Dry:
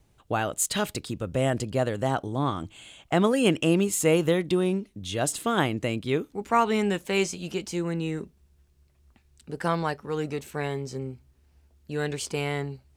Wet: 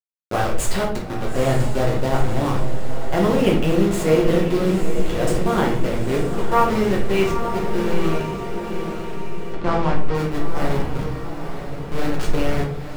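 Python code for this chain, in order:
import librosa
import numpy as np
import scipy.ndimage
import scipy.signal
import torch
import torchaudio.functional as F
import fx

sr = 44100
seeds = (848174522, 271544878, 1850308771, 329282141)

p1 = fx.delta_hold(x, sr, step_db=-24.0)
p2 = fx.high_shelf(p1, sr, hz=4400.0, db=-9.5)
p3 = fx.echo_diffused(p2, sr, ms=902, feedback_pct=53, wet_db=-8)
p4 = fx.rider(p3, sr, range_db=5, speed_s=2.0)
p5 = p3 + F.gain(torch.from_numpy(p4), -2.0).numpy()
p6 = fx.air_absorb(p5, sr, metres=98.0, at=(9.53, 10.15))
p7 = fx.room_shoebox(p6, sr, seeds[0], volume_m3=68.0, walls='mixed', distance_m=0.95)
y = F.gain(torch.from_numpy(p7), -4.5).numpy()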